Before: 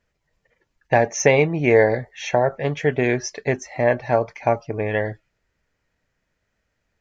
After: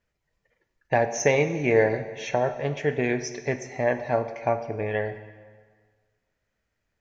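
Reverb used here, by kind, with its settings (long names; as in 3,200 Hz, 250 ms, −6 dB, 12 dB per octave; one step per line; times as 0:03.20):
dense smooth reverb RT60 1.6 s, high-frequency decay 0.85×, DRR 9 dB
level −5.5 dB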